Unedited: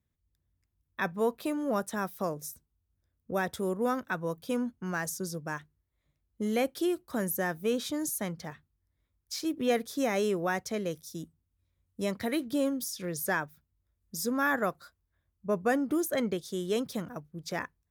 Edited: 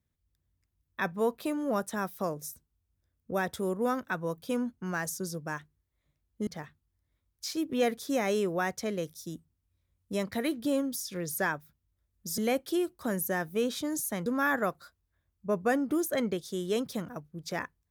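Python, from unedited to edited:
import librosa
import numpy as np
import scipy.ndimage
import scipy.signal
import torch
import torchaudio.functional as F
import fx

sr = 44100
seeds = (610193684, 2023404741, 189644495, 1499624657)

y = fx.edit(x, sr, fx.move(start_s=6.47, length_s=1.88, to_s=14.26), tone=tone)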